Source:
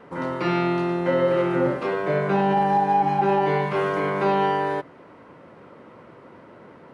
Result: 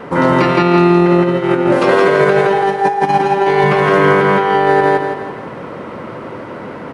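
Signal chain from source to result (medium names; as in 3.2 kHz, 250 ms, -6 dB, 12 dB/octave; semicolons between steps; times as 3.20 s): 1.72–3.64 s: tone controls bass -6 dB, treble +7 dB; compressor with a negative ratio -25 dBFS, ratio -0.5; on a send: feedback delay 166 ms, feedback 43%, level -3 dB; on the sum: loudness maximiser +14 dB; trim -1 dB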